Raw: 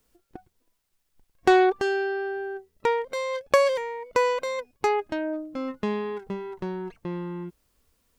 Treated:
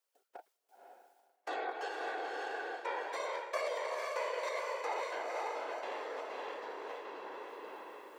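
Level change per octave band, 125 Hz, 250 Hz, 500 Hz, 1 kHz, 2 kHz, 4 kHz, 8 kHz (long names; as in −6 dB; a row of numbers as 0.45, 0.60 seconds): below −40 dB, −24.5 dB, −14.5 dB, −10.5 dB, −10.0 dB, −9.5 dB, −9.5 dB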